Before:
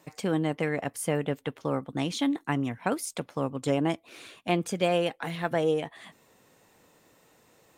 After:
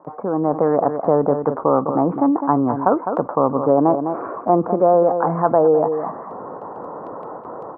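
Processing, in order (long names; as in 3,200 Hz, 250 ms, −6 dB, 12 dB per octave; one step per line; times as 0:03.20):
Butterworth low-pass 1,200 Hz 48 dB per octave
noise gate with hold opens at −54 dBFS
high-pass filter 850 Hz 6 dB per octave
automatic gain control gain up to 16 dB
on a send: single-tap delay 206 ms −14.5 dB
on the sum: envelope flattener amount 50%
level +1 dB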